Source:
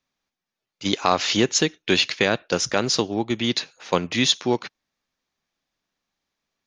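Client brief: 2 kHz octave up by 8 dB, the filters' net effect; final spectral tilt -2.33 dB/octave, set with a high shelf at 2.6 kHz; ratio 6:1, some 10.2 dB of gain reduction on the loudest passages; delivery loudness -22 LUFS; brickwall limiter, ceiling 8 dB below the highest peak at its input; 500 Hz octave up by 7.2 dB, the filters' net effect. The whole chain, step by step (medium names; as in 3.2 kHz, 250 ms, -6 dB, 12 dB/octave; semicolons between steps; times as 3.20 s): peaking EQ 500 Hz +8.5 dB; peaking EQ 2 kHz +8 dB; treble shelf 2.6 kHz +3.5 dB; compression 6:1, threshold -20 dBFS; trim +4 dB; peak limiter -8 dBFS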